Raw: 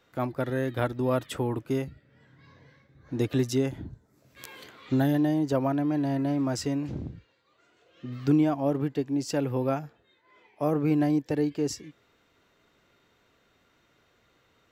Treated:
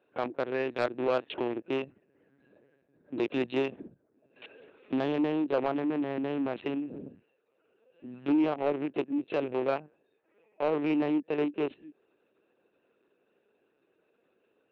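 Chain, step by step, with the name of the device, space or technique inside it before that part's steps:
adaptive Wiener filter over 41 samples
talking toy (linear-prediction vocoder at 8 kHz pitch kept; high-pass filter 360 Hz 12 dB per octave; parametric band 2,600 Hz +9.5 dB 0.47 octaves; soft clipping −22 dBFS, distortion −17 dB)
level +4 dB

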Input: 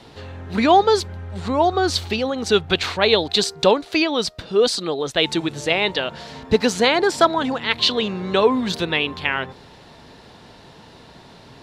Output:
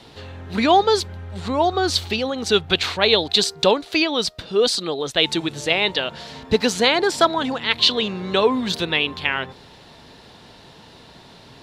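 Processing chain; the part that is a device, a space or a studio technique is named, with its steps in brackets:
presence and air boost (parametric band 3,500 Hz +3.5 dB 1.1 octaves; high-shelf EQ 9,700 Hz +5.5 dB)
level −1.5 dB

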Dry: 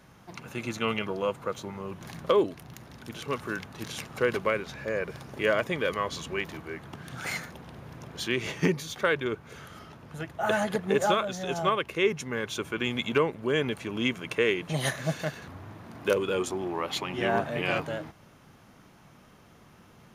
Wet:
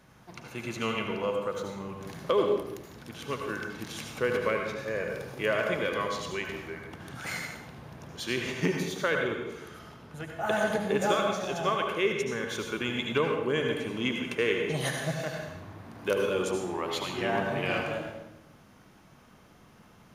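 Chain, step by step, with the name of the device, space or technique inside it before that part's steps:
bathroom (convolution reverb RT60 0.90 s, pre-delay 70 ms, DRR 2.5 dB)
0:04.78–0:05.48: high-shelf EQ 9,000 Hz +6 dB
level −3 dB

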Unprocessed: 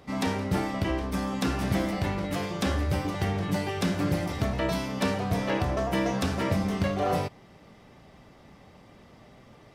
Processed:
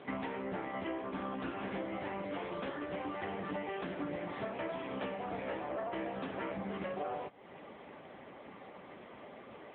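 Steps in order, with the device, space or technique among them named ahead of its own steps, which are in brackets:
voicemail (band-pass filter 300–3,200 Hz; downward compressor 8 to 1, threshold −42 dBFS, peak gain reduction 17.5 dB; level +7.5 dB; AMR narrowband 6.7 kbit/s 8,000 Hz)

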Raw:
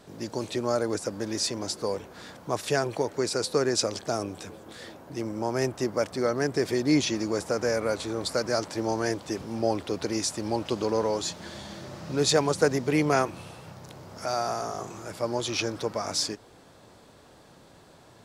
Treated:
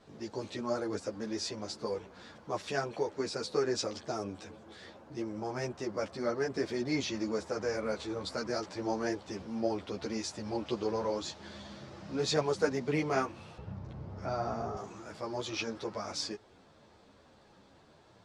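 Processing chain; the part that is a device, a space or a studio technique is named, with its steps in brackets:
string-machine ensemble chorus (string-ensemble chorus; low-pass filter 5,700 Hz 12 dB per octave)
0:13.58–0:14.77: RIAA equalisation playback
level −3.5 dB

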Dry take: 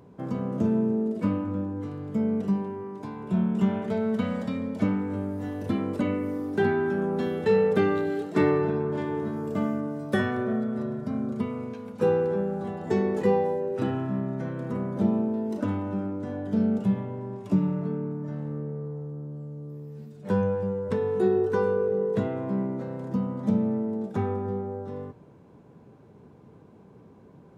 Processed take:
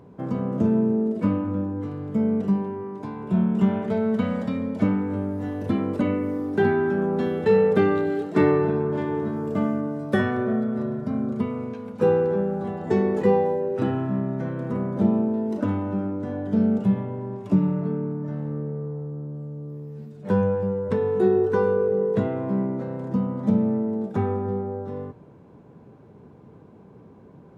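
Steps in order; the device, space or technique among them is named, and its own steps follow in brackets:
behind a face mask (high-shelf EQ 3,500 Hz −7 dB)
level +3.5 dB

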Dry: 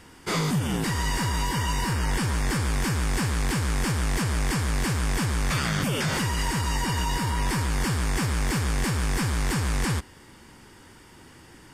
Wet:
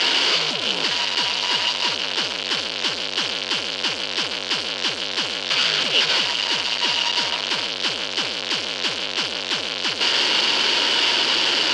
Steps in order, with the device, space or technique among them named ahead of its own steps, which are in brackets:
home computer beeper (sign of each sample alone; loudspeaker in its box 610–5,100 Hz, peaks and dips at 790 Hz −7 dB, 1,200 Hz −7 dB, 1,900 Hz −7 dB, 3,000 Hz +9 dB, 4,500 Hz +6 dB)
level +9 dB

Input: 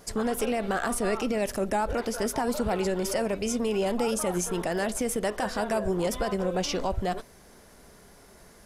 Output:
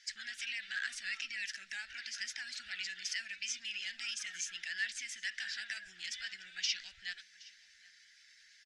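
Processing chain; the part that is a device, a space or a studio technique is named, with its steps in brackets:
clip after many re-uploads (low-pass filter 5,900 Hz 24 dB per octave; spectral magnitudes quantised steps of 15 dB)
elliptic high-pass filter 1,700 Hz, stop band 40 dB
single-tap delay 770 ms −22 dB
level +1 dB

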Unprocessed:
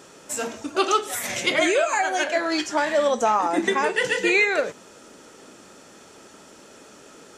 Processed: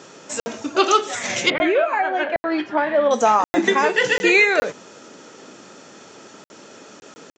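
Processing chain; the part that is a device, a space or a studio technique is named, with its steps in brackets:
call with lost packets (high-pass filter 100 Hz 24 dB per octave; downsampling to 16,000 Hz; dropped packets bursts)
0:01.50–0:03.11: high-frequency loss of the air 470 metres
level +4.5 dB

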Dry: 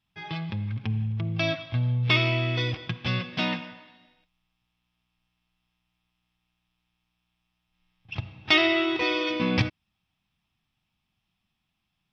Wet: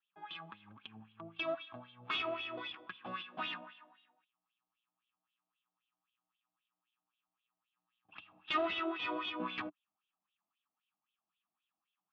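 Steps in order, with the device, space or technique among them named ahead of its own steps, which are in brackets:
wah-wah guitar rig (LFO wah 3.8 Hz 580–3,400 Hz, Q 3.4; tube saturation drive 27 dB, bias 0.35; loudspeaker in its box 87–3,600 Hz, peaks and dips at 130 Hz −9 dB, 190 Hz +5 dB, 300 Hz +8 dB, 520 Hz −7 dB, 1,200 Hz +7 dB, 2,100 Hz −10 dB)

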